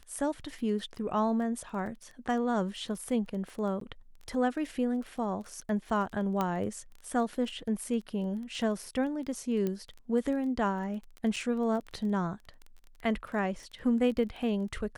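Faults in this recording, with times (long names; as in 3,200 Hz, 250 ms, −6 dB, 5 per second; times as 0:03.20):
surface crackle 14 per second −38 dBFS
0:03.80–0:03.81: drop-out 13 ms
0:06.41: click −17 dBFS
0:09.67: click −20 dBFS
0:11.36–0:11.37: drop-out 5 ms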